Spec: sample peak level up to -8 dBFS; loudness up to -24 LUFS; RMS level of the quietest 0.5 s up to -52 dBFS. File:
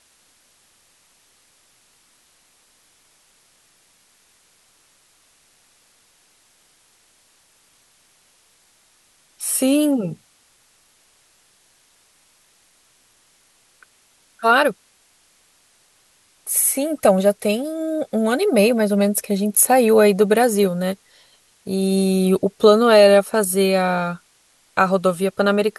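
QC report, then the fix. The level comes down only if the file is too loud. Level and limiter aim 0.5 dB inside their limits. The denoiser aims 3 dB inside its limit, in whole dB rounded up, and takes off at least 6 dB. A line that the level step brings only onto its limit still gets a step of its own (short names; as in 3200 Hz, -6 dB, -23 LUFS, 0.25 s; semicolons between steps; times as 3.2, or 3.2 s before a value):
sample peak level -2.0 dBFS: fail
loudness -17.5 LUFS: fail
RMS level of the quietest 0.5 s -58 dBFS: OK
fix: gain -7 dB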